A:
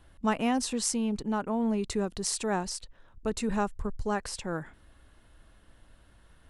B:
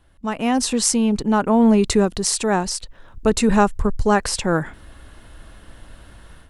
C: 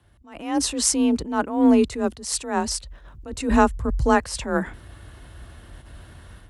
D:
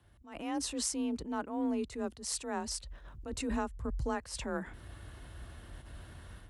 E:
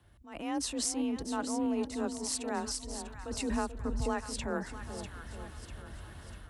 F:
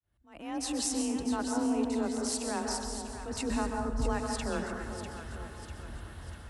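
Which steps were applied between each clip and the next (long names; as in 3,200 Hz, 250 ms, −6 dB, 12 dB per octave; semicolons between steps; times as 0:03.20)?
automatic gain control gain up to 15 dB
frequency shifter +33 Hz; level that may rise only so fast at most 110 dB per second; level −1 dB
downward compressor 3 to 1, threshold −29 dBFS, peak gain reduction 14 dB; level −5.5 dB
echo with a time of its own for lows and highs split 970 Hz, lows 435 ms, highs 646 ms, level −9 dB; level +1.5 dB
fade in at the beginning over 0.72 s; dense smooth reverb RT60 1.1 s, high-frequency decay 0.5×, pre-delay 115 ms, DRR 2.5 dB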